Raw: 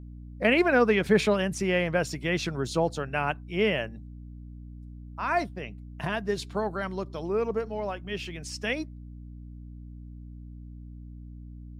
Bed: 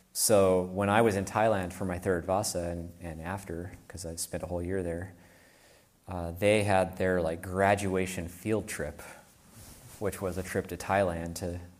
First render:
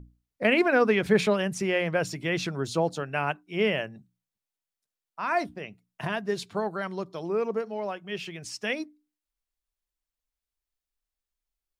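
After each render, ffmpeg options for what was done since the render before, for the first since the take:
-af "bandreject=f=60:t=h:w=6,bandreject=f=120:t=h:w=6,bandreject=f=180:t=h:w=6,bandreject=f=240:t=h:w=6,bandreject=f=300:t=h:w=6"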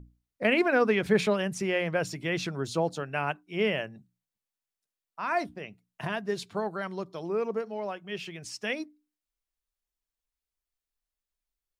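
-af "volume=-2dB"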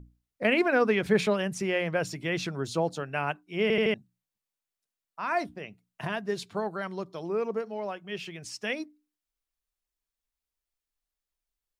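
-filter_complex "[0:a]asplit=5[a][b][c][d][e];[a]atrim=end=3.702[f];[b]atrim=start=3.618:end=3.702[g];[c]atrim=start=3.618:end=3.702[h];[d]atrim=start=3.618:end=3.702[i];[e]atrim=start=3.938[j];[f][g]acrossfade=d=0.004:c1=hsin:c2=hsin[k];[k][h]acrossfade=d=0.004:c1=hsin:c2=hsin[l];[l][i]acrossfade=d=0.004:c1=hsin:c2=hsin[m];[m][j]acrossfade=d=0.004:c1=hsin:c2=hsin"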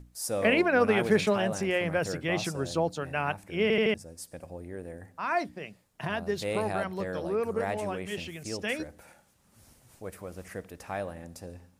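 -filter_complex "[1:a]volume=-8dB[a];[0:a][a]amix=inputs=2:normalize=0"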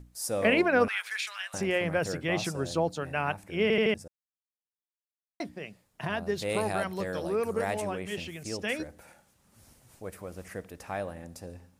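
-filter_complex "[0:a]asettb=1/sr,asplit=3[a][b][c];[a]atrim=end=0.884[d];[b]atrim=start=0.88:end=1.54,asetpts=PTS-STARTPTS,afade=t=in:d=0.004:c=qsin,afade=t=out:st=0.656:d=0.004:c=qsin,highpass=f=1.5k:w=0.5412,highpass=f=1.5k:w=1.3066[e];[c]atrim=start=1.536[f];[d][e]acrossfade=d=0.004:c1=hsin:c2=qsin[g];[g][f]acrossfade=d=0.004:c1=qsin:c2=hsin,asettb=1/sr,asplit=3[h][i][j];[h]atrim=end=6.494[k];[i]atrim=start=6.49:end=7.82,asetpts=PTS-STARTPTS,afade=t=in:d=0.004:c=qsin,afade=t=out:st=1.326:d=0.004:c=qsin,highshelf=f=3.5k:g=7.5[l];[j]atrim=start=7.816[m];[k][l]acrossfade=d=0.004:c1=hsin:c2=qsin[n];[n][m]acrossfade=d=0.004:c1=qsin:c2=hsin,asplit=3[o][p][q];[o]atrim=end=4.08,asetpts=PTS-STARTPTS,afade=t=out:st=4.076:d=0.004:c=hsin[r];[p]atrim=start=4.08:end=5.4,asetpts=PTS-STARTPTS,volume=0[s];[q]atrim=start=5.4,asetpts=PTS-STARTPTS,afade=t=in:d=0.004:c=hsin[t];[r][s][t]concat=n=3:v=0:a=1"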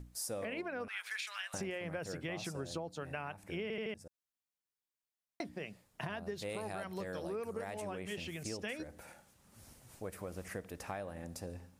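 -af "alimiter=limit=-18.5dB:level=0:latency=1:release=204,acompressor=threshold=-38dB:ratio=6"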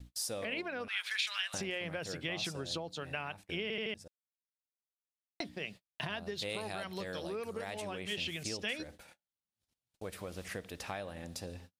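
-af "agate=range=-39dB:threshold=-52dB:ratio=16:detection=peak,equalizer=f=3.6k:w=1.1:g=11.5"

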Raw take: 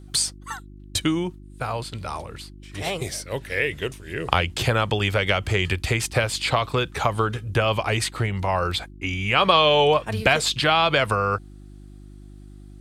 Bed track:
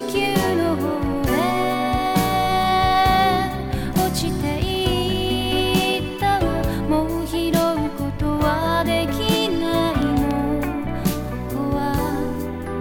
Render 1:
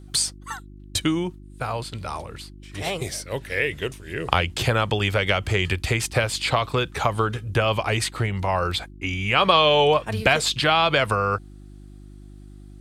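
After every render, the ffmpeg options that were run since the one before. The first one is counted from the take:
-af anull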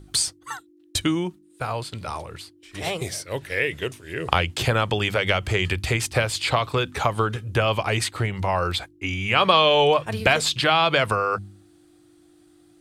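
-af "bandreject=f=50:t=h:w=4,bandreject=f=100:t=h:w=4,bandreject=f=150:t=h:w=4,bandreject=f=200:t=h:w=4,bandreject=f=250:t=h:w=4"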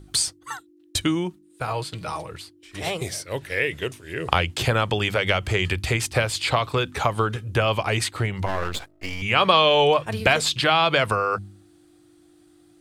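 -filter_complex "[0:a]asettb=1/sr,asplit=3[a][b][c];[a]atrim=end=1.674[d];[b]atrim=start=1.67:end=2.31,asetpts=PTS-STARTPTS,afade=t=in:d=0.004:c=qsin,afade=t=out:st=0.636:d=0.004:c=qsin,aecho=1:1:6.3:0.57,atrim=end_sample=28224[e];[c]atrim=start=2.306[f];[d][e]acrossfade=d=0.004:c1=hsin:c2=qsin[g];[g][f]acrossfade=d=0.004:c1=qsin:c2=hsin,asettb=1/sr,asplit=3[h][i][j];[h]atrim=end=8.464[k];[i]atrim=start=8.46:end=9.22,asetpts=PTS-STARTPTS,afade=t=in:d=0.004:c=qsin,afade=t=out:st=0.756:d=0.004:c=qsin,aeval=exprs='max(val(0),0)':c=same[l];[j]atrim=start=9.216[m];[k][l]acrossfade=d=0.004:c1=hsin:c2=qsin[n];[n][m]acrossfade=d=0.004:c1=qsin:c2=hsin"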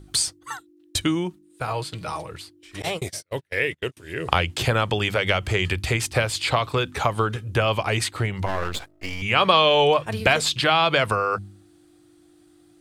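-filter_complex "[0:a]asettb=1/sr,asplit=3[a][b][c];[a]atrim=end=2.824[d];[b]atrim=start=2.82:end=3.97,asetpts=PTS-STARTPTS,afade=t=in:d=0.004:c=qsin,afade=t=out:st=1.146:d=0.004:c=qsin,agate=range=-37dB:threshold=-32dB:ratio=16:release=100:detection=peak[e];[c]atrim=start=3.966[f];[d][e]acrossfade=d=0.004:c1=hsin:c2=qsin[g];[g][f]acrossfade=d=0.004:c1=qsin:c2=hsin"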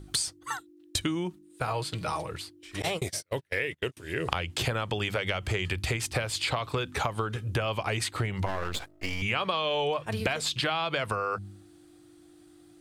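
-af "acompressor=threshold=-26dB:ratio=6"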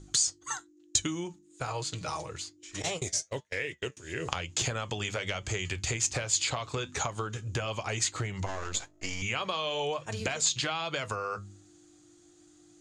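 -af "flanger=delay=6.1:depth=2.6:regen=-70:speed=1.1:shape=triangular,lowpass=f=6.8k:t=q:w=8.8"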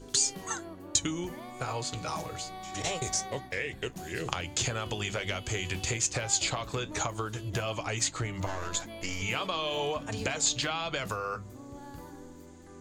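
-filter_complex "[1:a]volume=-24dB[a];[0:a][a]amix=inputs=2:normalize=0"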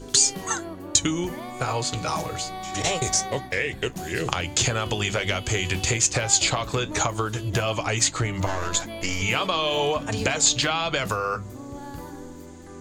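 -af "volume=8dB,alimiter=limit=-3dB:level=0:latency=1"

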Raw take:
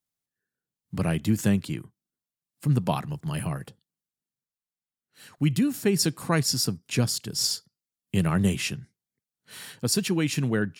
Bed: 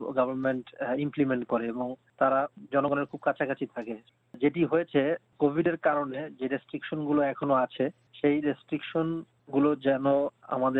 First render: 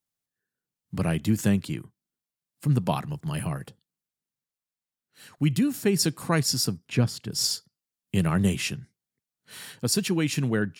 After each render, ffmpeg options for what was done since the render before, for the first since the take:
-filter_complex "[0:a]asettb=1/sr,asplit=3[a][b][c];[a]atrim=end=6.854[d];[b]atrim=start=6.85:end=7.32,asetpts=PTS-STARTPTS,afade=t=in:d=0.004:c=qsin,afade=t=out:st=0.466:d=0.004:c=qsin,bass=f=250:g=2,treble=f=4k:g=-11[e];[c]atrim=start=7.316[f];[d][e]acrossfade=d=0.004:c1=hsin:c2=qsin[g];[g][f]acrossfade=d=0.004:c1=qsin:c2=hsin"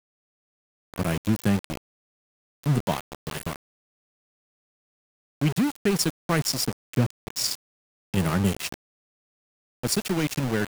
-af "aeval=exprs='val(0)*gte(abs(val(0)),0.0531)':c=same"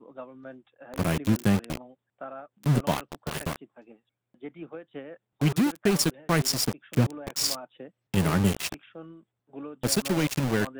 -filter_complex "[1:a]volume=-15.5dB[a];[0:a][a]amix=inputs=2:normalize=0"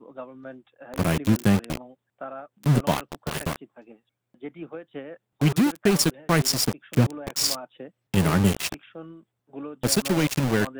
-af "volume=3dB"

